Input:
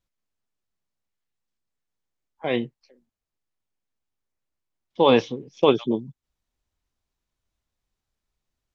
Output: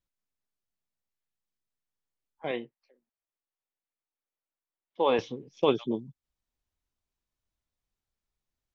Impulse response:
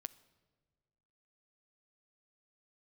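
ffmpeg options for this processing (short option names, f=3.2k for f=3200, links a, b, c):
-filter_complex "[0:a]asettb=1/sr,asplit=3[a][b][c];[a]atrim=end=2.514[d];[b]atrim=start=2.51:end=5.19,asetpts=PTS-STARTPTS,afade=t=in:d=0.004:c=qsin,afade=t=out:st=2.676:d=0.004:c=qsin,bass=f=250:g=-14,treble=f=4k:g=-13[e];[c]atrim=start=5.186[f];[d][e]acrossfade=d=0.004:c1=hsin:c2=qsin[g];[g][f]acrossfade=d=0.004:c1=qsin:c2=hsin,volume=-6.5dB"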